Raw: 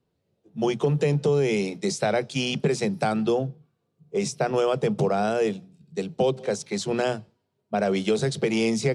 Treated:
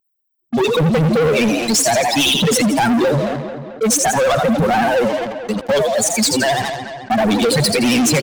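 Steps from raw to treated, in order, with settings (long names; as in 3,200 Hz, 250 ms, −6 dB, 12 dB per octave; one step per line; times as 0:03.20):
spectral dynamics exaggerated over time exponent 3
high-shelf EQ 2,300 Hz +11 dB
echo with shifted repeats 91 ms, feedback 48%, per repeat +58 Hz, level −12 dB
pitch vibrato 13 Hz 80 cents
parametric band 160 Hz +5.5 dB 1.8 octaves
notch filter 370 Hz, Q 12
leveller curve on the samples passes 5
wrong playback speed 44.1 kHz file played as 48 kHz
feedback echo with a low-pass in the loop 219 ms, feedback 30%, low-pass 4,500 Hz, level −19 dB
in parallel at −11.5 dB: wave folding −26.5 dBFS
on the sum: envelope flattener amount 50%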